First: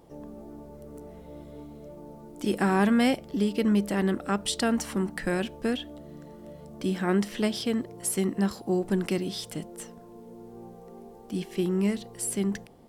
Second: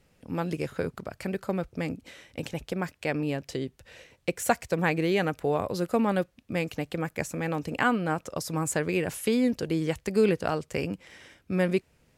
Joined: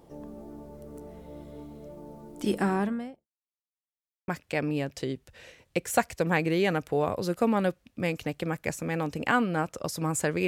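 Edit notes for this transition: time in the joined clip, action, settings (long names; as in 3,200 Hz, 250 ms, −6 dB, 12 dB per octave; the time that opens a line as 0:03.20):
first
0:02.43–0:03.28: fade out and dull
0:03.28–0:04.28: silence
0:04.28: continue with second from 0:02.80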